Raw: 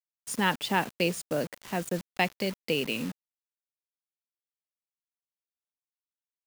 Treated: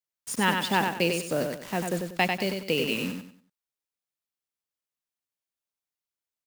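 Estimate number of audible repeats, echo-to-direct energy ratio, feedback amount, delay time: 3, −4.5 dB, 30%, 95 ms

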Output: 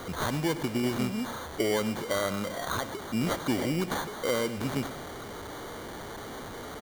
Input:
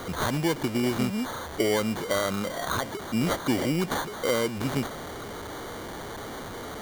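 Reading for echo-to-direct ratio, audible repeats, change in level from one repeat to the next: −13.5 dB, 2, −4.5 dB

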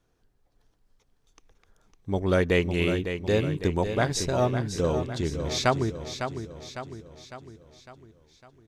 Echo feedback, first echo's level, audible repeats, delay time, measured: 52%, −8.5 dB, 5, 554 ms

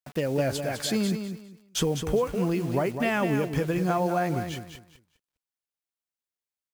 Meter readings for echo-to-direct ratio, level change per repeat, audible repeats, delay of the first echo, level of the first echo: −8.0 dB, −13.0 dB, 3, 203 ms, −8.0 dB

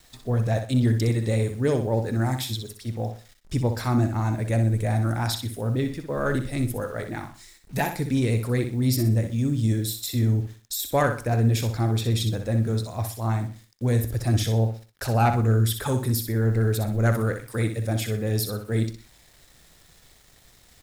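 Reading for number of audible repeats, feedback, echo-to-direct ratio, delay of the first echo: 3, 31%, −7.5 dB, 62 ms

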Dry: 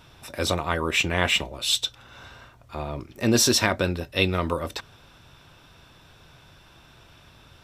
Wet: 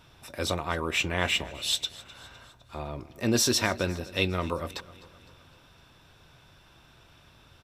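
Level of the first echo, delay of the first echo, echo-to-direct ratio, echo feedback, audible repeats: −19.5 dB, 255 ms, −18.0 dB, 54%, 3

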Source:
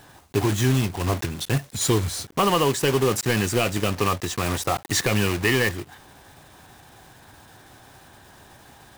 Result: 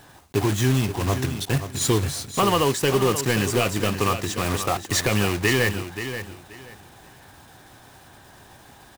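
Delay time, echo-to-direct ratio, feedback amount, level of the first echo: 530 ms, −10.0 dB, 22%, −10.0 dB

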